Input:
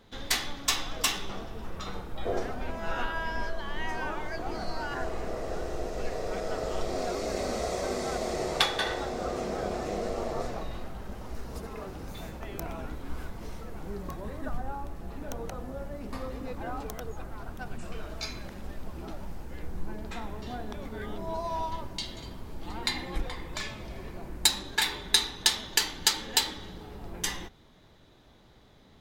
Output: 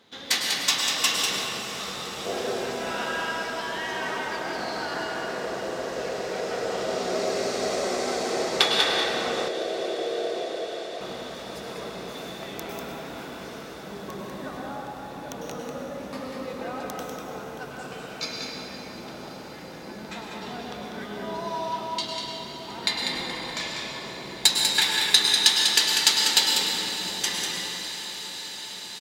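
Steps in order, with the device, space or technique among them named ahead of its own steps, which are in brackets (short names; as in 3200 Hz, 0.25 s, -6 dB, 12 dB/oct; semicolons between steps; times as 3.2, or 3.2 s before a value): PA in a hall (HPF 180 Hz 12 dB/oct; bell 3900 Hz +6 dB 2.4 oct; echo 0.195 s -6 dB; reverb RT60 2.4 s, pre-delay 97 ms, DRR 0 dB); 9.48–11.01 elliptic band-pass 320–700 Hz; diffused feedback echo 0.581 s, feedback 78%, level -13.5 dB; gain -1 dB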